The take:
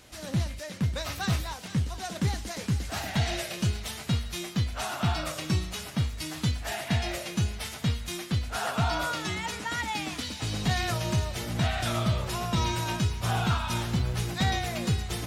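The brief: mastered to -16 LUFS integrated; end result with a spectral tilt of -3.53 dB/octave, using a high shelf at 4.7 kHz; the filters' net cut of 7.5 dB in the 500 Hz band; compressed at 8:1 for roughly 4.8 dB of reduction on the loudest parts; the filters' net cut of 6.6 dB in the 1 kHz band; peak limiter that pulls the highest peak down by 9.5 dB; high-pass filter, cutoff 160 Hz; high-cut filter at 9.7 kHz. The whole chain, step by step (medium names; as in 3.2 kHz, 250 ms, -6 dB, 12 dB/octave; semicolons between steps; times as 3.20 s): high-pass 160 Hz; low-pass 9.7 kHz; peaking EQ 500 Hz -9 dB; peaking EQ 1 kHz -5.5 dB; treble shelf 4.7 kHz -3.5 dB; compression 8:1, threshold -31 dBFS; trim +23.5 dB; peak limiter -7 dBFS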